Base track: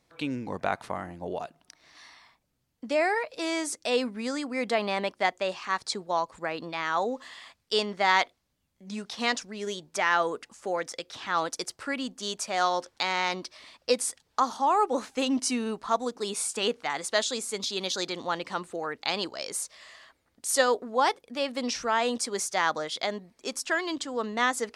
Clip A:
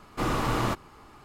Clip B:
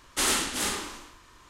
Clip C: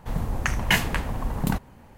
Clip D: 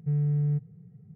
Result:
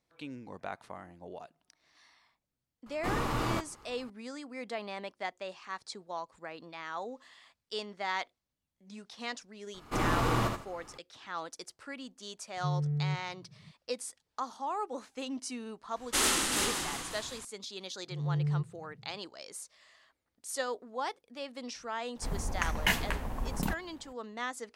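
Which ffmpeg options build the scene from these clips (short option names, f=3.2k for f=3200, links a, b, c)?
-filter_complex "[1:a]asplit=2[a][b];[4:a]asplit=2[c][d];[0:a]volume=-11.5dB[e];[b]aecho=1:1:77|154|231:0.596|0.143|0.0343[f];[2:a]asplit=8[g][h][i][j][k][l][m][n];[h]adelay=181,afreqshift=-40,volume=-7dB[o];[i]adelay=362,afreqshift=-80,volume=-11.7dB[p];[j]adelay=543,afreqshift=-120,volume=-16.5dB[q];[k]adelay=724,afreqshift=-160,volume=-21.2dB[r];[l]adelay=905,afreqshift=-200,volume=-25.9dB[s];[m]adelay=1086,afreqshift=-240,volume=-30.7dB[t];[n]adelay=1267,afreqshift=-280,volume=-35.4dB[u];[g][o][p][q][r][s][t][u]amix=inputs=8:normalize=0[v];[d]dynaudnorm=f=130:g=3:m=11.5dB[w];[3:a]equalizer=f=120:t=o:w=0.71:g=-7.5[x];[a]atrim=end=1.24,asetpts=PTS-STARTPTS,volume=-5dB,afade=t=in:d=0.004:c=hsin,afade=t=out:st=1.236:d=0.004:c=hsin,adelay=2860[y];[f]atrim=end=1.24,asetpts=PTS-STARTPTS,volume=-3.5dB,afade=t=in:d=0.004:c=hsin,afade=t=out:st=1.236:d=0.004:c=hsin,adelay=9740[z];[c]atrim=end=1.15,asetpts=PTS-STARTPTS,volume=-6dB,afade=t=in:d=0.004:c=hsin,afade=t=out:st=1.146:d=0.004:c=hsin,adelay=12570[aa];[v]atrim=end=1.49,asetpts=PTS-STARTPTS,volume=-2.5dB,afade=t=in:d=0.004:c=hsin,afade=t=out:st=1.486:d=0.004:c=hsin,adelay=15960[ab];[w]atrim=end=1.15,asetpts=PTS-STARTPTS,volume=-16dB,afade=t=in:d=0.004:c=hsin,afade=t=out:st=1.146:d=0.004:c=hsin,adelay=18040[ac];[x]atrim=end=1.97,asetpts=PTS-STARTPTS,volume=-6.5dB,afade=t=in:d=0.004:c=hsin,afade=t=out:st=1.966:d=0.004:c=hsin,adelay=22160[ad];[e][y][z][aa][ab][ac][ad]amix=inputs=7:normalize=0"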